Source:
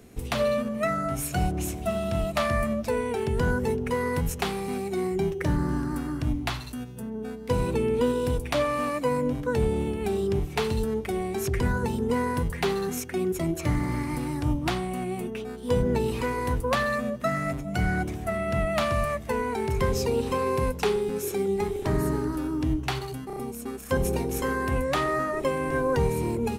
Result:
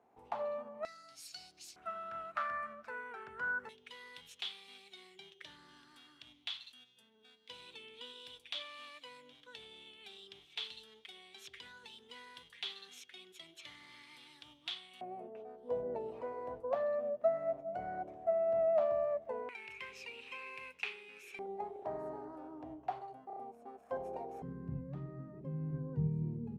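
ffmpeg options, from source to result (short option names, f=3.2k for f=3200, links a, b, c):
-af "asetnsamples=n=441:p=0,asendcmd='0.85 bandpass f 4600;1.76 bandpass f 1400;3.69 bandpass f 3400;15.01 bandpass f 640;19.49 bandpass f 2500;21.39 bandpass f 710;24.42 bandpass f 160',bandpass=f=850:t=q:w=6.2:csg=0"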